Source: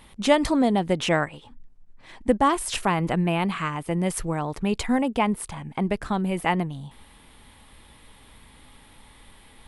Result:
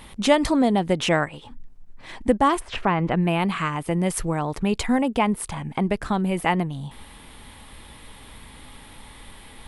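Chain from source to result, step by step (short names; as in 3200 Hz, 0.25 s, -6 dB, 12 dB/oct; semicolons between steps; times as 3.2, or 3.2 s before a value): 2.59–3.21 LPF 1900 Hz -> 3700 Hz 12 dB/oct; in parallel at +1.5 dB: compressor, threshold -36 dBFS, peak gain reduction 21 dB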